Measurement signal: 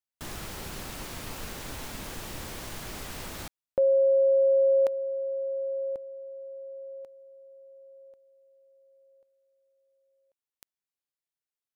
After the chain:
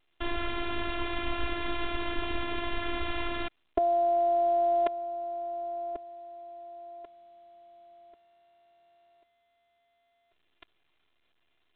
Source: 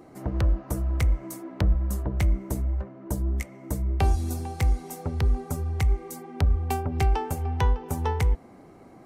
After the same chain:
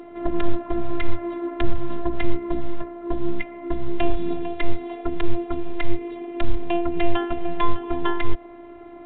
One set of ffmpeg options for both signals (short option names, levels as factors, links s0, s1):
-af "afftfilt=real='hypot(re,im)*cos(PI*b)':imag='0':win_size=512:overlap=0.75,alimiter=level_in=6.68:limit=0.891:release=50:level=0:latency=1,volume=0.562" -ar 8000 -c:a pcm_alaw